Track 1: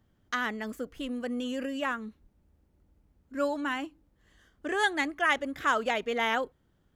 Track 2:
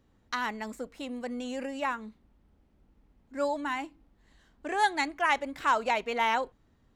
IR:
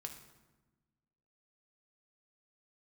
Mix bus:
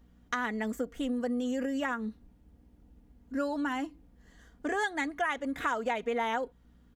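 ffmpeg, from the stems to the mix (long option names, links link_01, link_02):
-filter_complex "[0:a]volume=1dB[link_01];[1:a]aeval=exprs='val(0)+0.00141*(sin(2*PI*60*n/s)+sin(2*PI*2*60*n/s)/2+sin(2*PI*3*60*n/s)/3+sin(2*PI*4*60*n/s)/4+sin(2*PI*5*60*n/s)/5)':channel_layout=same,volume=-4dB[link_02];[link_01][link_02]amix=inputs=2:normalize=0,aecho=1:1:4.2:0.43,acompressor=threshold=-29dB:ratio=4"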